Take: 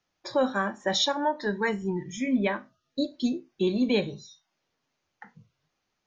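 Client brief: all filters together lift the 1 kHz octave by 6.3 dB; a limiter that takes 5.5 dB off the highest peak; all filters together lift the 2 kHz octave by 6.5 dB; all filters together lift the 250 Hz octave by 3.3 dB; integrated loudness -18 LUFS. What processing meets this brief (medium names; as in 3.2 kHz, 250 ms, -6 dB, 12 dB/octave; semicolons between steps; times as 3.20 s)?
peaking EQ 250 Hz +3.5 dB; peaking EQ 1 kHz +6 dB; peaking EQ 2 kHz +6 dB; trim +8 dB; peak limiter -6.5 dBFS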